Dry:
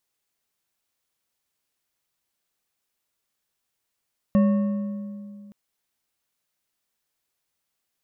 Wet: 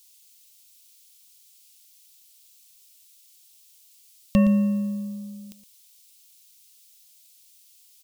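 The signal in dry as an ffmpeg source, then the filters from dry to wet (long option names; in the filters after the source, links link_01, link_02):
-f lavfi -i "aevalsrc='0.2*pow(10,-3*t/2.43)*sin(2*PI*204*t)+0.0668*pow(10,-3*t/1.793)*sin(2*PI*562.4*t)+0.0224*pow(10,-3*t/1.465)*sin(2*PI*1102.4*t)+0.0075*pow(10,-3*t/1.26)*sin(2*PI*1822.3*t)+0.00251*pow(10,-3*t/1.117)*sin(2*PI*2721.4*t)':duration=1.17:sample_rate=44100"
-filter_complex "[0:a]lowshelf=frequency=84:gain=11,aexciter=amount=11.6:drive=4.6:freq=2400,asplit=2[link_01][link_02];[link_02]adelay=116.6,volume=-12dB,highshelf=frequency=4000:gain=-2.62[link_03];[link_01][link_03]amix=inputs=2:normalize=0"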